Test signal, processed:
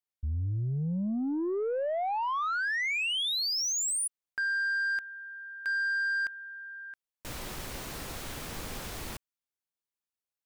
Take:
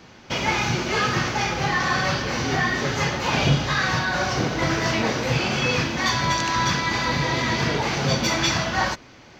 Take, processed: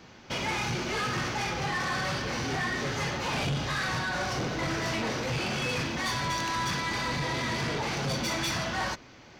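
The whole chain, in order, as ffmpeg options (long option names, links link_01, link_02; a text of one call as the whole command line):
ffmpeg -i in.wav -af "aeval=exprs='0.473*(cos(1*acos(clip(val(0)/0.473,-1,1)))-cos(1*PI/2))+0.00376*(cos(8*acos(clip(val(0)/0.473,-1,1)))-cos(8*PI/2))':channel_layout=same,asoftclip=type=tanh:threshold=-22dB,volume=-4dB" out.wav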